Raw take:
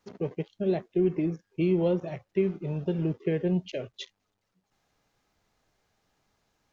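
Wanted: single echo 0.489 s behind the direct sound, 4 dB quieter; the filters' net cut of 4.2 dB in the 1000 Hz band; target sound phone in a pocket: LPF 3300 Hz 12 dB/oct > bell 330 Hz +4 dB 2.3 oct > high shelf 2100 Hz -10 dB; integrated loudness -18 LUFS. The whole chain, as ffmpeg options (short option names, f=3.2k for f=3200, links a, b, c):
-af "lowpass=3.3k,equalizer=f=330:t=o:w=2.3:g=4,equalizer=f=1k:t=o:g=-8,highshelf=f=2.1k:g=-10,aecho=1:1:489:0.631,volume=7.5dB"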